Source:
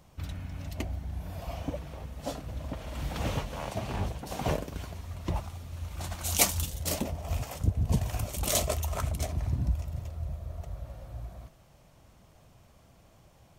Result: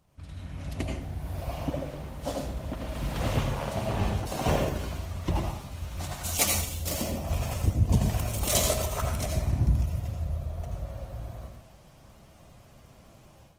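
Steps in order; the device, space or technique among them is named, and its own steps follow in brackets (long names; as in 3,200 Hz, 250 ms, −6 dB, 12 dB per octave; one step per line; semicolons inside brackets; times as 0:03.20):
speakerphone in a meeting room (convolution reverb RT60 0.60 s, pre-delay 74 ms, DRR 1.5 dB; automatic gain control gain up to 11 dB; level −8 dB; Opus 20 kbit/s 48,000 Hz)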